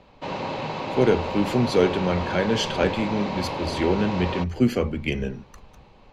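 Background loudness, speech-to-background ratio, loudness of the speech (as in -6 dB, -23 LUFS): -30.5 LUFS, 6.0 dB, -24.5 LUFS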